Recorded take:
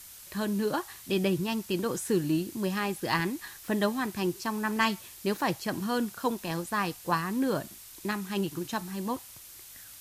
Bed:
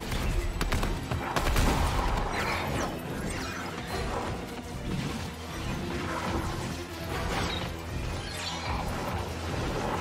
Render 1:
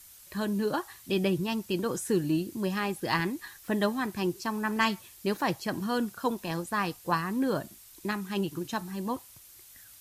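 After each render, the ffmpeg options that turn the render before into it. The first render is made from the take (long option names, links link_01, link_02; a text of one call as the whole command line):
ffmpeg -i in.wav -af "afftdn=noise_reduction=6:noise_floor=-49" out.wav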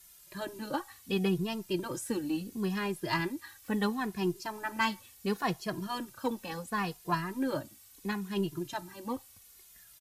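ffmpeg -i in.wav -filter_complex "[0:a]aeval=exprs='0.224*(cos(1*acos(clip(val(0)/0.224,-1,1)))-cos(1*PI/2))+0.00891*(cos(4*acos(clip(val(0)/0.224,-1,1)))-cos(4*PI/2))+0.00708*(cos(6*acos(clip(val(0)/0.224,-1,1)))-cos(6*PI/2))+0.00398*(cos(7*acos(clip(val(0)/0.224,-1,1)))-cos(7*PI/2))':channel_layout=same,asplit=2[link_01][link_02];[link_02]adelay=2.4,afreqshift=-0.72[link_03];[link_01][link_03]amix=inputs=2:normalize=1" out.wav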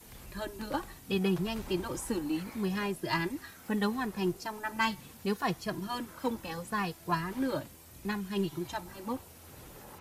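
ffmpeg -i in.wav -i bed.wav -filter_complex "[1:a]volume=-20dB[link_01];[0:a][link_01]amix=inputs=2:normalize=0" out.wav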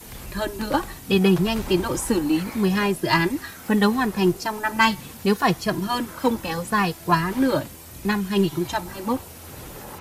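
ffmpeg -i in.wav -af "volume=11.5dB" out.wav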